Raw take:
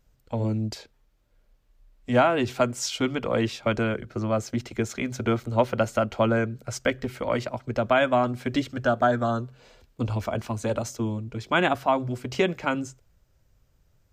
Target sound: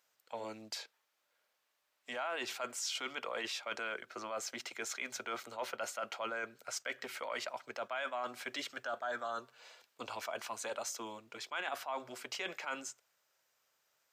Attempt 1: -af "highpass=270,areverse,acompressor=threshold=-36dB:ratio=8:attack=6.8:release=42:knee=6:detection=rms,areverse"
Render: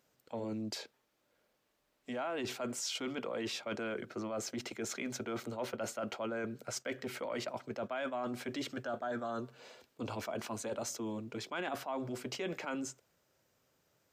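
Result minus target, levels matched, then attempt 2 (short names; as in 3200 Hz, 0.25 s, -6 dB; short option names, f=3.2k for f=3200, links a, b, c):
250 Hz band +11.0 dB
-af "highpass=880,areverse,acompressor=threshold=-36dB:ratio=8:attack=6.8:release=42:knee=6:detection=rms,areverse"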